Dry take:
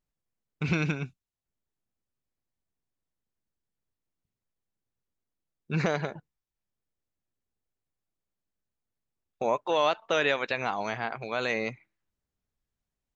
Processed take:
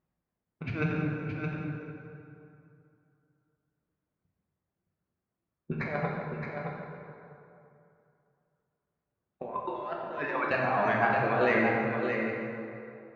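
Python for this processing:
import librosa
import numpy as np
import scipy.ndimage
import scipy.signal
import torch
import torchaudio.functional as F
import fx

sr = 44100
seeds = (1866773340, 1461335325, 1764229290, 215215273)

p1 = fx.self_delay(x, sr, depth_ms=0.063)
p2 = fx.dereverb_blind(p1, sr, rt60_s=1.8)
p3 = scipy.signal.sosfilt(scipy.signal.butter(2, 71.0, 'highpass', fs=sr, output='sos'), p2)
p4 = fx.dereverb_blind(p3, sr, rt60_s=0.79)
p5 = scipy.signal.sosfilt(scipy.signal.butter(2, 1600.0, 'lowpass', fs=sr, output='sos'), p4)
p6 = fx.peak_eq(p5, sr, hz=860.0, db=-2.5, octaves=0.26)
p7 = fx.over_compress(p6, sr, threshold_db=-35.0, ratio=-0.5)
p8 = p7 + fx.echo_single(p7, sr, ms=619, db=-6.0, dry=0)
p9 = fx.rev_plate(p8, sr, seeds[0], rt60_s=2.7, hf_ratio=0.6, predelay_ms=0, drr_db=-3.0)
y = p9 * 10.0 ** (3.0 / 20.0)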